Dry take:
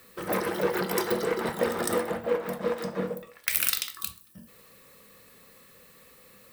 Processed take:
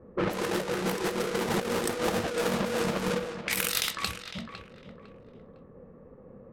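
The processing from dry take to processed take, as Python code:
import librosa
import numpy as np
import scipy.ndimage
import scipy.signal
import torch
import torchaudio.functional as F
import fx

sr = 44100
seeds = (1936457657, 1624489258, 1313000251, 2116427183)

y = fx.halfwave_hold(x, sr)
y = fx.env_lowpass(y, sr, base_hz=440.0, full_db=-23.0)
y = fx.over_compress(y, sr, threshold_db=-30.0, ratio=-1.0)
y = fx.echo_feedback(y, sr, ms=505, feedback_pct=29, wet_db=-10.0)
y = fx.env_lowpass(y, sr, base_hz=1600.0, full_db=-25.5)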